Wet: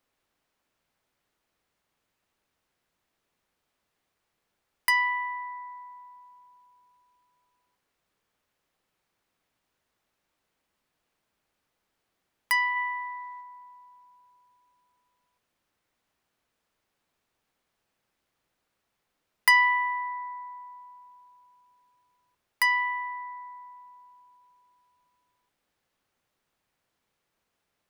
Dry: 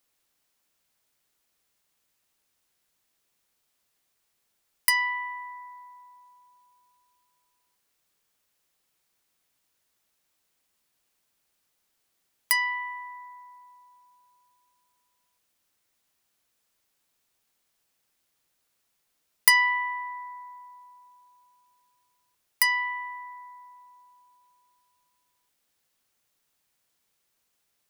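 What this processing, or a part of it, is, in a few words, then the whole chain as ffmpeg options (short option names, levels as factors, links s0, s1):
through cloth: -filter_complex "[0:a]highshelf=f=3800:g=-15.5,asplit=3[s0][s1][s2];[s0]afade=t=out:st=12.75:d=0.02[s3];[s1]equalizer=f=3200:t=o:w=2.5:g=5,afade=t=in:st=12.75:d=0.02,afade=t=out:st=13.4:d=0.02[s4];[s2]afade=t=in:st=13.4:d=0.02[s5];[s3][s4][s5]amix=inputs=3:normalize=0,volume=1.58"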